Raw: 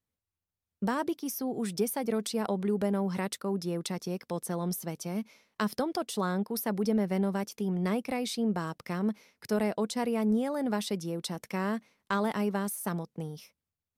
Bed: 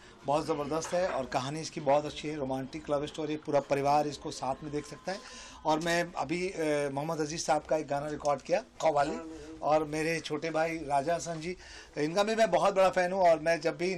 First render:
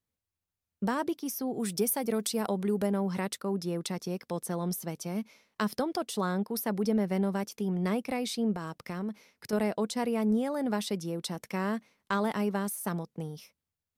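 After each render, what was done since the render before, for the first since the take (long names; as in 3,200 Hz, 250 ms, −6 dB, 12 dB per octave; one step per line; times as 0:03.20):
0:01.60–0:02.87: high-shelf EQ 7,700 Hz +9 dB
0:08.54–0:09.53: downward compressor 3 to 1, threshold −32 dBFS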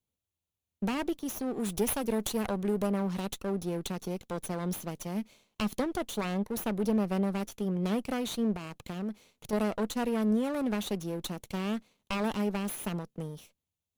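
lower of the sound and its delayed copy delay 0.3 ms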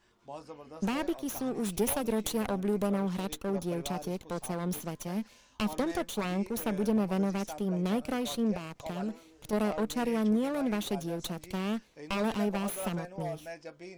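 mix in bed −15 dB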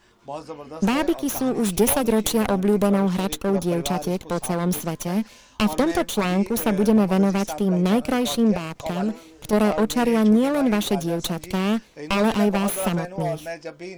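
level +10.5 dB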